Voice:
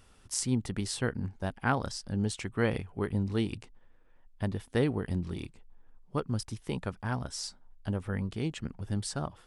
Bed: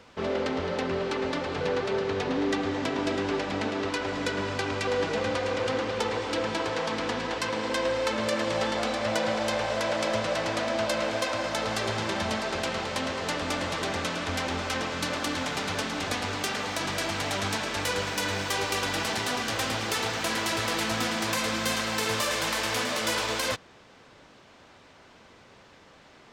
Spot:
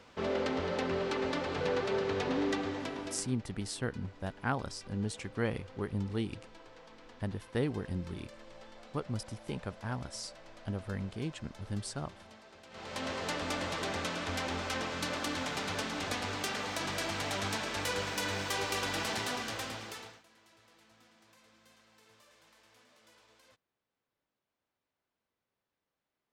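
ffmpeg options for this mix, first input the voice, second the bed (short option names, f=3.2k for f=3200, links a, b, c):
-filter_complex "[0:a]adelay=2800,volume=-4.5dB[a];[1:a]volume=16dB,afade=t=out:st=2.38:d=0.98:silence=0.0841395,afade=t=in:st=12.69:d=0.42:silence=0.1,afade=t=out:st=19.19:d=1.04:silence=0.0316228[b];[a][b]amix=inputs=2:normalize=0"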